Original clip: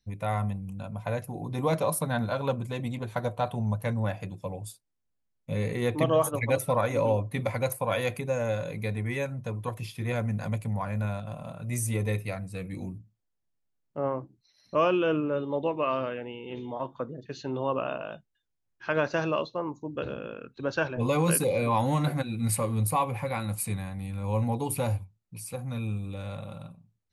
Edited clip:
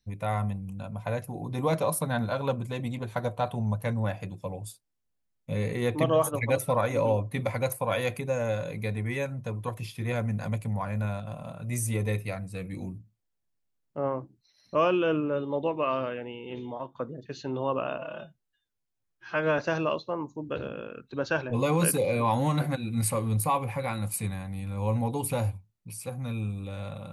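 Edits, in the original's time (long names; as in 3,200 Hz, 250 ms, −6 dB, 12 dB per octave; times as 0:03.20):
0:16.67–0:16.95: fade out, to −8.5 dB
0:17.98–0:19.05: time-stretch 1.5×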